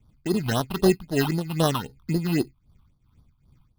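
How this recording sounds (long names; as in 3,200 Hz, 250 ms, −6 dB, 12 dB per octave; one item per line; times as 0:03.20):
aliases and images of a low sample rate 2,300 Hz, jitter 0%
phaser sweep stages 6, 3.8 Hz, lowest notch 470–2,400 Hz
tremolo triangle 2.6 Hz, depth 80%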